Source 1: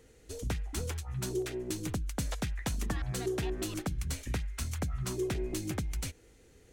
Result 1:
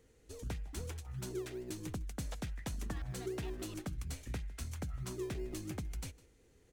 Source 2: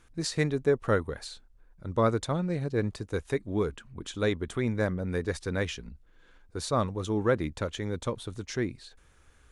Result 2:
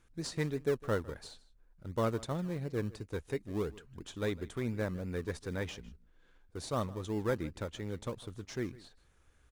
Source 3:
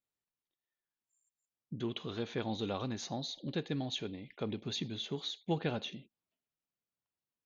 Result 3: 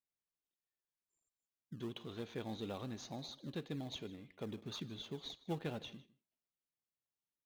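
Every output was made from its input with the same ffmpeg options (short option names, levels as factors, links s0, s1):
-filter_complex "[0:a]asplit=2[s0][s1];[s1]acrusher=samples=25:mix=1:aa=0.000001:lfo=1:lforange=15:lforate=2.9,volume=0.282[s2];[s0][s2]amix=inputs=2:normalize=0,aecho=1:1:155:0.0944,volume=0.376"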